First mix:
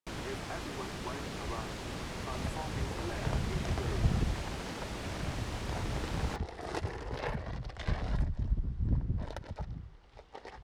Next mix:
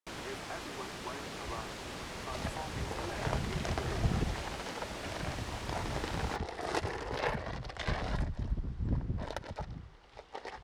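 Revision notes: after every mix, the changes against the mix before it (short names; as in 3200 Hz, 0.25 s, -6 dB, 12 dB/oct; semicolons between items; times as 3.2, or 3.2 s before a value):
second sound +5.0 dB; master: add low shelf 230 Hz -9 dB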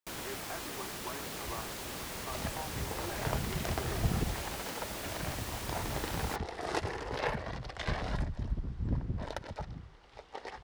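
first sound: remove air absorption 67 m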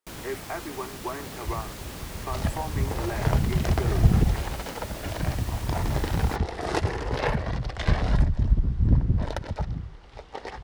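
speech +9.0 dB; second sound +5.5 dB; master: add low shelf 230 Hz +9 dB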